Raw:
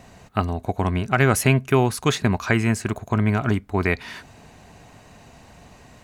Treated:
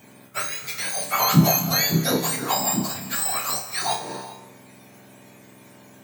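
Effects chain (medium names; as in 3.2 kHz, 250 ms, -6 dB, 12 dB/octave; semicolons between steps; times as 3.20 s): spectrum inverted on a logarithmic axis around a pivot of 1.3 kHz; band-stop 2.7 kHz, Q 14; flutter echo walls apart 5.3 m, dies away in 0.33 s; on a send at -10 dB: reverberation, pre-delay 3 ms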